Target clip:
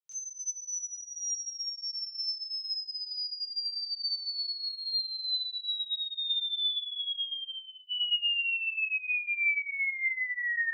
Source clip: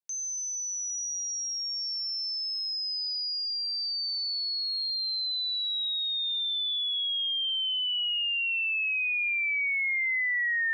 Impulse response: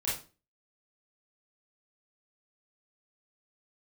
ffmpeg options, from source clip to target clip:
-filter_complex "[0:a]asplit=3[a][b][c];[a]afade=t=out:st=7.27:d=0.02[d];[b]bandreject=f=3k:w=5.1,afade=t=in:st=7.27:d=0.02,afade=t=out:st=7.88:d=0.02[e];[c]afade=t=in:st=7.88:d=0.02[f];[d][e][f]amix=inputs=3:normalize=0[g];[1:a]atrim=start_sample=2205,asetrate=57330,aresample=44100[h];[g][h]afir=irnorm=-1:irlink=0,volume=-6.5dB"

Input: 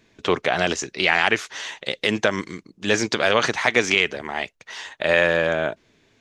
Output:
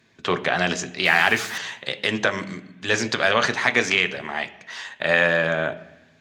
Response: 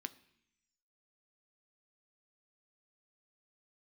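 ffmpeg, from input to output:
-filter_complex "[0:a]asettb=1/sr,asplit=3[a][b][c];[a]atrim=end=1.054[d];[b]atrim=start=1.05:end=1.58,asetpts=PTS-STARTPTS,afade=t=in:d=0.004:c=qsin,afade=t=out:st=0.526:d=0.004:c=qsin,aeval=exprs='val(0)+0.5*0.0335*sgn(val(0))':c=same[e];[c]atrim=start=1.576[f];[d][e]acrossfade=d=0.004:c1=hsin:c2=qsin[g];[g][f]acrossfade=d=0.004:c1=qsin:c2=hsin[h];[1:a]atrim=start_sample=2205,asetrate=32193,aresample=44100[i];[h][i]afir=irnorm=-1:irlink=0,volume=1dB"

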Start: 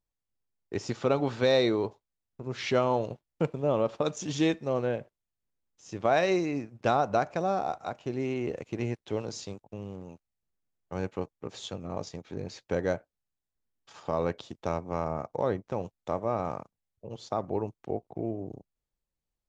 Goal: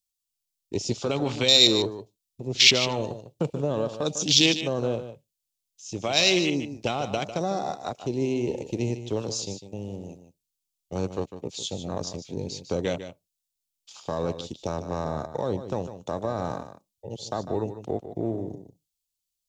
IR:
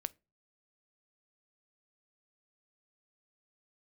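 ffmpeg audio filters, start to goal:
-filter_complex "[0:a]afwtdn=0.0126,alimiter=limit=-19.5dB:level=0:latency=1:release=17,acrossover=split=350|3000[a][b][c];[b]acompressor=threshold=-31dB:ratio=6[d];[a][d][c]amix=inputs=3:normalize=0,aexciter=amount=8.2:drive=6.6:freq=2.5k,asplit=2[e][f];[1:a]atrim=start_sample=2205,asetrate=79380,aresample=44100,adelay=150[g];[f][g]afir=irnorm=-1:irlink=0,volume=-4.5dB[h];[e][h]amix=inputs=2:normalize=0,volume=4.5dB"

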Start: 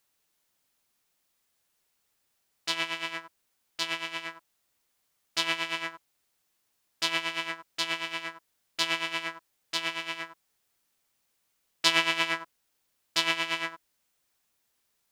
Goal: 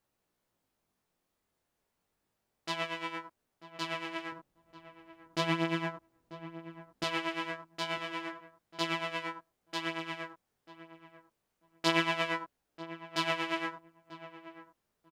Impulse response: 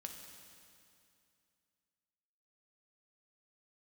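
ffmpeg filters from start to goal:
-filter_complex "[0:a]tiltshelf=f=1.4k:g=8,flanger=delay=16:depth=7:speed=0.32,asettb=1/sr,asplit=3[a][b][c];[a]atrim=end=4.324[d];[b]atrim=start=4.32:end=7.04,asetpts=PTS-STARTPTS,afade=t=in:d=0.004:c=qsin,afade=t=out:st=2.716:d=0.004:c=qsin,lowshelf=f=410:g=11.5[e];[c]atrim=start=7.036[f];[d][e]acrossfade=d=0.004:c1=hsin:c2=qsin[g];[g][f]acrossfade=d=0.004:c1=qsin:c2=hsin,asplit=2[h][i];[i]adelay=941,lowpass=f=1.1k:p=1,volume=-13dB,asplit=2[j][k];[k]adelay=941,lowpass=f=1.1k:p=1,volume=0.18[l];[h][j][l]amix=inputs=3:normalize=0"

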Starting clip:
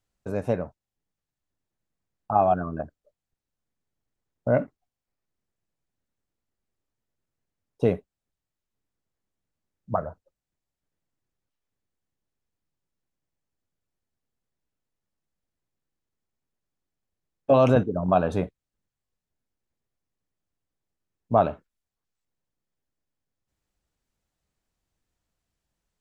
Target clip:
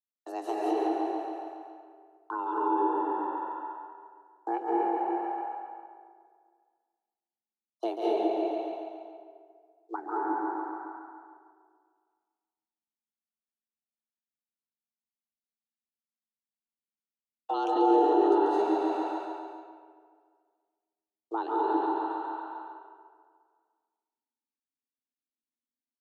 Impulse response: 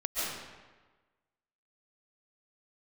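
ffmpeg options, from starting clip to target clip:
-filter_complex "[0:a]agate=range=-33dB:threshold=-42dB:ratio=3:detection=peak,afreqshift=220,equalizer=f=125:t=o:w=1:g=9,equalizer=f=500:t=o:w=1:g=-10,equalizer=f=2k:t=o:w=1:g=-9,equalizer=f=4k:t=o:w=1:g=7,asplit=2[a][b];[b]aecho=0:1:139|278|417|556|695|834|973:0.501|0.286|0.163|0.0928|0.0529|0.0302|0.0172[c];[a][c]amix=inputs=2:normalize=0[d];[1:a]atrim=start_sample=2205,asetrate=29547,aresample=44100[e];[d][e]afir=irnorm=-1:irlink=0,acrossover=split=480[f][g];[g]alimiter=limit=-22.5dB:level=0:latency=1:release=434[h];[f][h]amix=inputs=2:normalize=0,volume=-3dB"

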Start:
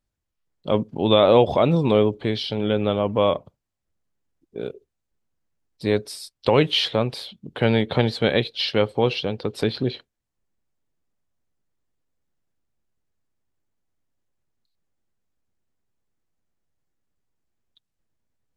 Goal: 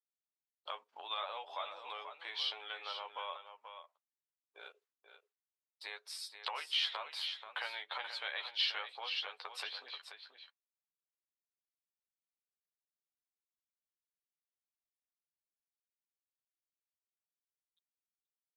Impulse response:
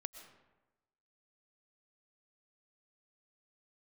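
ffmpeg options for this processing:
-filter_complex "[0:a]highshelf=f=5k:g=-9,asplit=2[a][b];[b]adelay=12,volume=-4.5dB[c];[a][c]amix=inputs=2:normalize=0,acompressor=threshold=-25dB:ratio=6,aecho=1:1:483:0.355,agate=range=-33dB:threshold=-49dB:ratio=3:detection=peak,highpass=f=940:w=0.5412,highpass=f=940:w=1.3066,volume=-3.5dB"

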